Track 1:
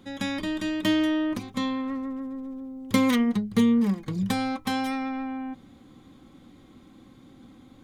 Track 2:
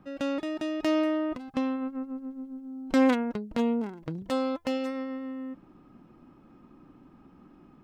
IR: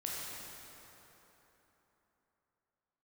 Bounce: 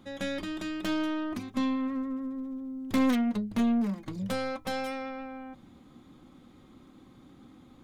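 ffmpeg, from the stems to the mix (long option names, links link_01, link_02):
-filter_complex "[0:a]asoftclip=type=tanh:threshold=-22dB,volume=-4dB[link_01];[1:a]aeval=exprs='(tanh(15.8*val(0)+0.65)-tanh(0.65))/15.8':channel_layout=same,volume=-1,volume=-2dB[link_02];[link_01][link_02]amix=inputs=2:normalize=0"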